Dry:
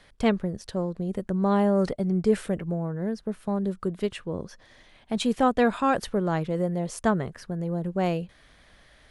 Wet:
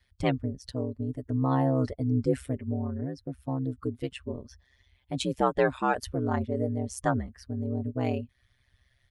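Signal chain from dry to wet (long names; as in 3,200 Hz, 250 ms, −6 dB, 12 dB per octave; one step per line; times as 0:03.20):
spectral dynamics exaggerated over time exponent 1.5
comb filter 6.1 ms, depth 38%
in parallel at −3 dB: downward compressor, threshold −37 dBFS, peak gain reduction 18 dB
on the sum: ring modulation 65 Hz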